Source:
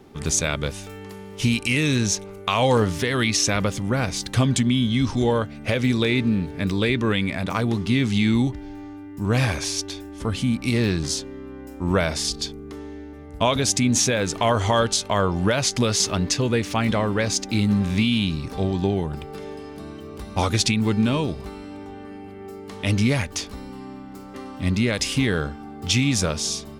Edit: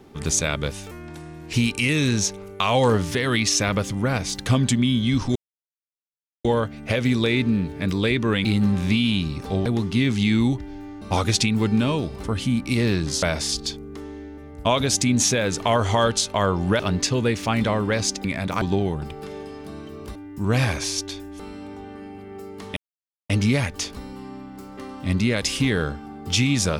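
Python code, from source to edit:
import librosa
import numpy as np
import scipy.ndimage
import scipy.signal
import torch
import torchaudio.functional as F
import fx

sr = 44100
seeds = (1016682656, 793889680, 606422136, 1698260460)

y = fx.edit(x, sr, fx.speed_span(start_s=0.91, length_s=0.5, speed=0.8),
    fx.insert_silence(at_s=5.23, length_s=1.09),
    fx.swap(start_s=7.23, length_s=0.37, other_s=17.52, other_length_s=1.21),
    fx.swap(start_s=8.96, length_s=1.24, other_s=20.27, other_length_s=1.22),
    fx.cut(start_s=11.19, length_s=0.79),
    fx.cut(start_s=15.55, length_s=0.52),
    fx.insert_silence(at_s=22.86, length_s=0.53), tone=tone)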